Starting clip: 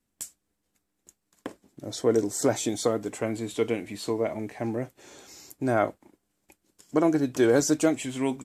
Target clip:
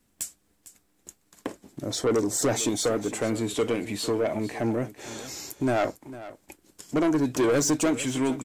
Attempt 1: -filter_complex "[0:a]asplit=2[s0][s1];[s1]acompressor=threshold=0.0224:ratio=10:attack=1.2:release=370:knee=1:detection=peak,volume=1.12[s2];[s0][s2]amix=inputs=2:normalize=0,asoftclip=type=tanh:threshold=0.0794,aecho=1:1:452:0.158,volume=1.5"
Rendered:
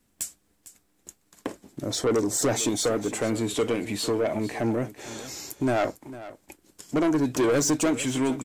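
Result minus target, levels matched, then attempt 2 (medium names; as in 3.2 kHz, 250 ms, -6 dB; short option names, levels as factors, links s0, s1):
compression: peak gain reduction -5.5 dB
-filter_complex "[0:a]asplit=2[s0][s1];[s1]acompressor=threshold=0.0112:ratio=10:attack=1.2:release=370:knee=1:detection=peak,volume=1.12[s2];[s0][s2]amix=inputs=2:normalize=0,asoftclip=type=tanh:threshold=0.0794,aecho=1:1:452:0.158,volume=1.5"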